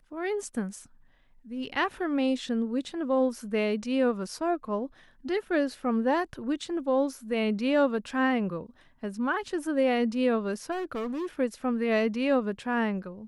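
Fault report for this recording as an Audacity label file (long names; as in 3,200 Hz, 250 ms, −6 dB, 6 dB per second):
10.710000	11.270000	clipping −29.5 dBFS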